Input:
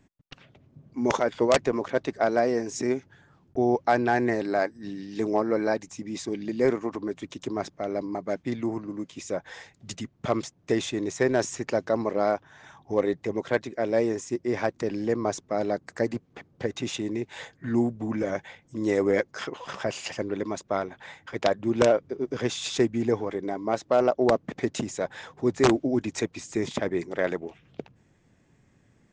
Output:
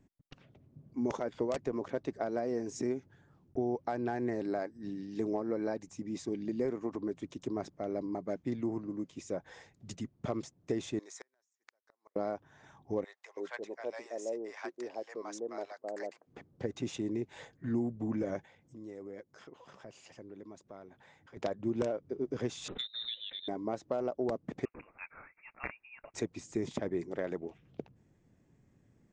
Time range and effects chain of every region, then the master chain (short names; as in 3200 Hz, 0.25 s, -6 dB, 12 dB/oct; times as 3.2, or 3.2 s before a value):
10.99–12.16 HPF 1200 Hz + bell 2800 Hz -9 dB 0.35 oct + flipped gate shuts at -26 dBFS, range -39 dB
13.04–16.27 HPF 600 Hz + bands offset in time highs, lows 0.33 s, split 780 Hz
18.45–21.37 HPF 50 Hz + compressor 2:1, threshold -52 dBFS
22.68–23.48 inverted band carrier 3900 Hz + core saturation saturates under 810 Hz
24.65–26.14 HPF 730 Hz 24 dB/oct + inverted band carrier 3100 Hz
whole clip: compressor, threshold -24 dBFS; EQ curve 340 Hz 0 dB, 1600 Hz -7 dB, 3700 Hz -8 dB, 5800 Hz -6 dB; gain -4 dB